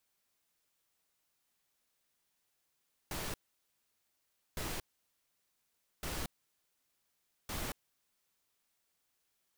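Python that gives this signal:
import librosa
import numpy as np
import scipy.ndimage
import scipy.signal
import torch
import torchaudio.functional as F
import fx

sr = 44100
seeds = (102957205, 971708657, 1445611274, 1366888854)

y = fx.noise_burst(sr, seeds[0], colour='pink', on_s=0.23, off_s=1.23, bursts=4, level_db=-39.0)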